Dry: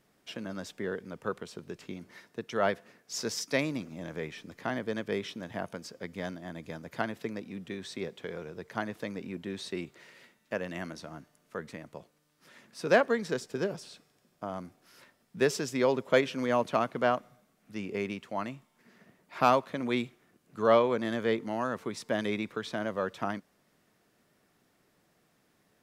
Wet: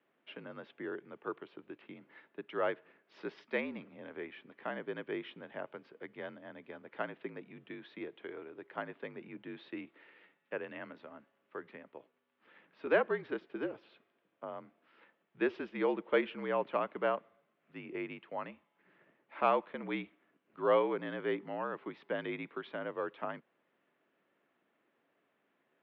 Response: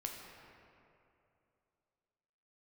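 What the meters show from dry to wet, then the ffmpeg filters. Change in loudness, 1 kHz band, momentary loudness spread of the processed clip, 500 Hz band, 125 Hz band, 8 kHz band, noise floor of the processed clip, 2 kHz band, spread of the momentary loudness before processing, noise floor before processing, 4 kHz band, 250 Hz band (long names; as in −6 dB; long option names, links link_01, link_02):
−5.5 dB, −6.0 dB, 19 LU, −5.5 dB, −12.0 dB, below −35 dB, −78 dBFS, −5.5 dB, 18 LU, −71 dBFS, −11.0 dB, −7.0 dB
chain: -af "highpass=frequency=290:width_type=q:width=0.5412,highpass=frequency=290:width_type=q:width=1.307,lowpass=frequency=3200:width_type=q:width=0.5176,lowpass=frequency=3200:width_type=q:width=0.7071,lowpass=frequency=3200:width_type=q:width=1.932,afreqshift=-51,volume=-5dB"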